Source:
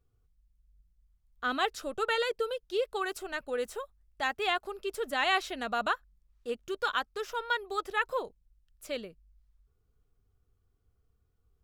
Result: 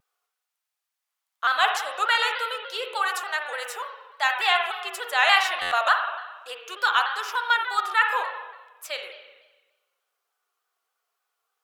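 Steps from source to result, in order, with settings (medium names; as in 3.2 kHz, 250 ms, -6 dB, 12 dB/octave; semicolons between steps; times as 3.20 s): high-pass 740 Hz 24 dB/octave; spring tank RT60 1.2 s, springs 41/54 ms, chirp 55 ms, DRR 3.5 dB; buffer glitch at 5.61 s, samples 512, times 8; vibrato with a chosen wave saw down 3.4 Hz, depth 100 cents; trim +9 dB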